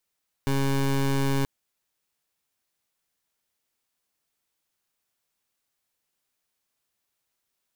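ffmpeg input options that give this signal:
-f lavfi -i "aevalsrc='0.0668*(2*lt(mod(137*t,1),0.21)-1)':d=0.98:s=44100"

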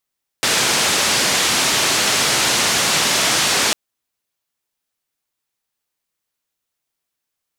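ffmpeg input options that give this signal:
-f lavfi -i "anoisesrc=c=white:d=3.3:r=44100:seed=1,highpass=f=110,lowpass=f=6800,volume=-7.2dB"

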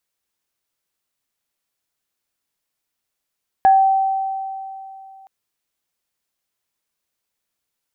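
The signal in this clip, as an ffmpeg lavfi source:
-f lavfi -i "aevalsrc='0.422*pow(10,-3*t/2.82)*sin(2*PI*773*t)+0.0596*pow(10,-3*t/0.3)*sin(2*PI*1670*t)':d=1.62:s=44100"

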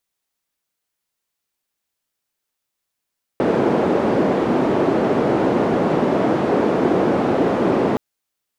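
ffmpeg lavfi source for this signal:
-f lavfi -i "anoisesrc=c=white:d=4.57:r=44100:seed=1,highpass=f=250,lowpass=f=390,volume=8dB"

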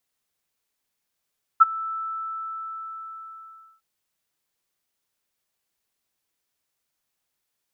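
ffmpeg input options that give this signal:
-f lavfi -i "aevalsrc='0.501*sin(2*PI*1320*t)':d=2.21:s=44100,afade=t=in:d=0.018,afade=t=out:st=0.018:d=0.022:silence=0.0891,afade=t=out:st=0.32:d=1.89"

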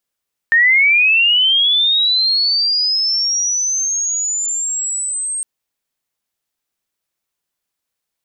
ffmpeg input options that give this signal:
-f lavfi -i "aevalsrc='pow(10,(-8-11*t/4.91)/20)*sin(2*PI*(1800*t+6700*t*t/(2*4.91)))':d=4.91:s=44100"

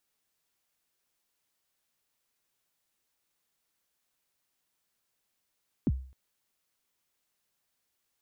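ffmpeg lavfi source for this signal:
-f lavfi -i "aevalsrc='0.1*pow(10,-3*t/0.45)*sin(2*PI*(330*0.039/log(65/330)*(exp(log(65/330)*min(t,0.039)/0.039)-1)+65*max(t-0.039,0)))':d=0.26:s=44100"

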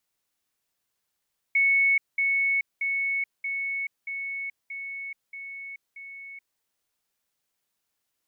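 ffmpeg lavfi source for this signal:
-f lavfi -i "aevalsrc='pow(10,(-18-3*floor(t/0.63))/20)*sin(2*PI*2210*t)*clip(min(mod(t,0.63),0.43-mod(t,0.63))/0.005,0,1)':d=5.04:s=44100"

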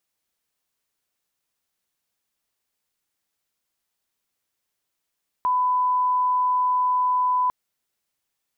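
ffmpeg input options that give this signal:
-f lavfi -i "sine=f=1000:d=2.05:r=44100,volume=0.06dB"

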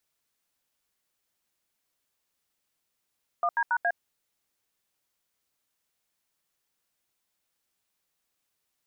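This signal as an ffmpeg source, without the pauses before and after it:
-f lavfi -i "aevalsrc='0.0562*clip(min(mod(t,0.139),0.06-mod(t,0.139))/0.002,0,1)*(eq(floor(t/0.139),0)*(sin(2*PI*697*mod(t,0.139))+sin(2*PI*1209*mod(t,0.139)))+eq(floor(t/0.139),1)*(sin(2*PI*941*mod(t,0.139))+sin(2*PI*1633*mod(t,0.139)))+eq(floor(t/0.139),2)*(sin(2*PI*941*mod(t,0.139))+sin(2*PI*1477*mod(t,0.139)))+eq(floor(t/0.139),3)*(sin(2*PI*697*mod(t,0.139))+sin(2*PI*1633*mod(t,0.139))))':d=0.556:s=44100"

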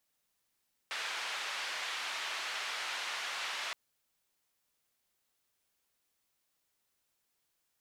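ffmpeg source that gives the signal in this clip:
-f lavfi -i "anoisesrc=c=white:d=2.82:r=44100:seed=1,highpass=f=920,lowpass=f=3200,volume=-24.2dB"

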